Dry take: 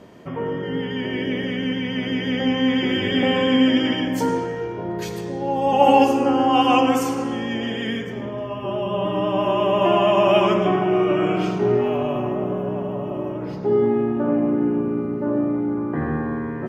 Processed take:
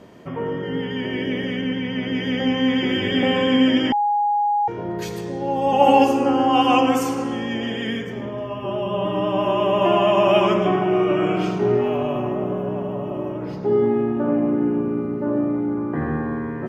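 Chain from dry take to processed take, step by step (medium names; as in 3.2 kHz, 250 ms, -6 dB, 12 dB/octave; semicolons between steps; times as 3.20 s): 1.61–2.15 s: treble shelf 4.7 kHz -7.5 dB; 3.92–4.68 s: bleep 826 Hz -16.5 dBFS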